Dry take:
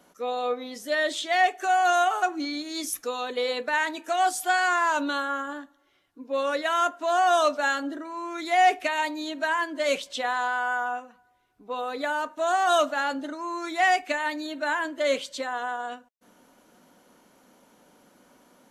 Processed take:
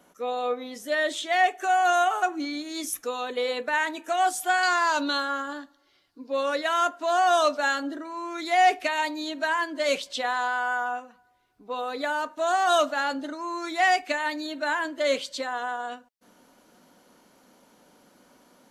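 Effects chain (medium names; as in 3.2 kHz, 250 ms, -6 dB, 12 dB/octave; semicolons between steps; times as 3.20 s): peaking EQ 4.6 kHz -4 dB 0.45 oct, from 4.63 s +14 dB, from 6.33 s +4 dB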